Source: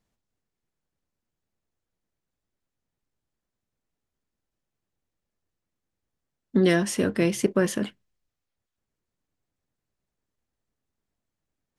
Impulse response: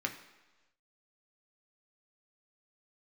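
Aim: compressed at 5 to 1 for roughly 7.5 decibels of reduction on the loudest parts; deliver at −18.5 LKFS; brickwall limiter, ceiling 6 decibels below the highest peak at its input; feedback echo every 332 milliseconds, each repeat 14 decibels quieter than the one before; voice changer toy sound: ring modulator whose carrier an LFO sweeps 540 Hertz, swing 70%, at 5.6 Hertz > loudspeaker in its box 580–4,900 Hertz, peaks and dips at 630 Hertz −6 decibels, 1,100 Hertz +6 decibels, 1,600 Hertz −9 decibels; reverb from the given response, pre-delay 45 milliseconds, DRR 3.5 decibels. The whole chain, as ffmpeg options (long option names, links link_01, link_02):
-filter_complex "[0:a]acompressor=threshold=-24dB:ratio=5,alimiter=limit=-21dB:level=0:latency=1,aecho=1:1:332|664:0.2|0.0399,asplit=2[link_01][link_02];[1:a]atrim=start_sample=2205,adelay=45[link_03];[link_02][link_03]afir=irnorm=-1:irlink=0,volume=-7.5dB[link_04];[link_01][link_04]amix=inputs=2:normalize=0,aeval=exprs='val(0)*sin(2*PI*540*n/s+540*0.7/5.6*sin(2*PI*5.6*n/s))':channel_layout=same,highpass=580,equalizer=frequency=630:width_type=q:width=4:gain=-6,equalizer=frequency=1100:width_type=q:width=4:gain=6,equalizer=frequency=1600:width_type=q:width=4:gain=-9,lowpass=frequency=4900:width=0.5412,lowpass=frequency=4900:width=1.3066,volume=18dB"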